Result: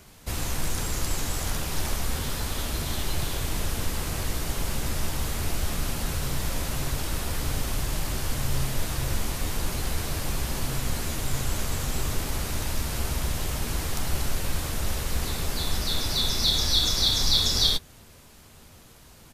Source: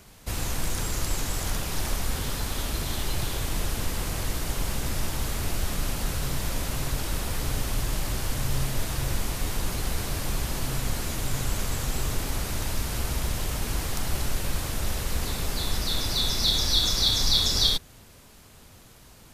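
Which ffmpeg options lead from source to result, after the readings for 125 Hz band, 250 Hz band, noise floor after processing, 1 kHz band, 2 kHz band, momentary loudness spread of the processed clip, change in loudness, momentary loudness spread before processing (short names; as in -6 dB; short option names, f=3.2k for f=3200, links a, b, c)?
+0.5 dB, +0.5 dB, -51 dBFS, +0.5 dB, +0.5 dB, 9 LU, 0.0 dB, 9 LU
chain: -filter_complex "[0:a]asplit=2[a][b];[b]adelay=13,volume=-12dB[c];[a][c]amix=inputs=2:normalize=0"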